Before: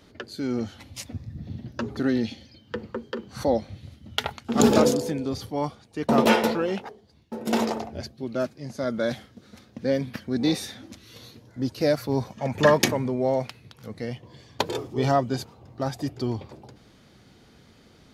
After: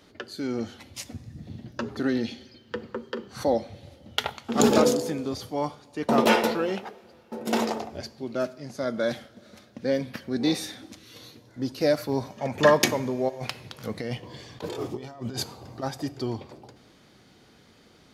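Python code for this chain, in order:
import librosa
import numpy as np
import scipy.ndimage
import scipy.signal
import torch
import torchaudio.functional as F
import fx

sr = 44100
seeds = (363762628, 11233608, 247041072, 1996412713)

y = fx.low_shelf(x, sr, hz=160.0, db=-7.5)
y = fx.over_compress(y, sr, threshold_db=-36.0, ratio=-1.0, at=(13.28, 15.82), fade=0.02)
y = fx.rev_double_slope(y, sr, seeds[0], early_s=0.55, late_s=2.9, knee_db=-15, drr_db=15.0)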